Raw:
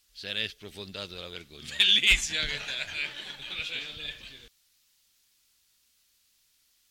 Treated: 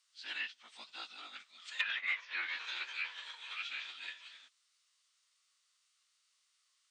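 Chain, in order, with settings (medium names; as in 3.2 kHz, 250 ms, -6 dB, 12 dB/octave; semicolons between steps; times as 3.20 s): low-pass that closes with the level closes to 2 kHz, closed at -22 dBFS; ladder high-pass 850 Hz, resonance 45%; formant-preserving pitch shift -10 st; trim +2.5 dB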